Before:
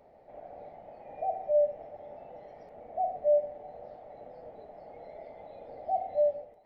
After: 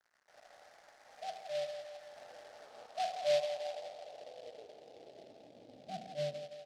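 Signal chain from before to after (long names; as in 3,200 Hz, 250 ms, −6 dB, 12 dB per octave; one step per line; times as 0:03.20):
sub-octave generator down 2 octaves, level −2 dB
0:02.16–0:02.86: parametric band 270 Hz +9.5 dB 2.8 octaves
dead-zone distortion −54.5 dBFS
band-pass filter sweep 1,600 Hz → 240 Hz, 0:02.36–0:05.80
feedback echo with a high-pass in the loop 167 ms, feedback 66%, high-pass 330 Hz, level −7 dB
short delay modulated by noise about 3,200 Hz, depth 0.057 ms
level +2 dB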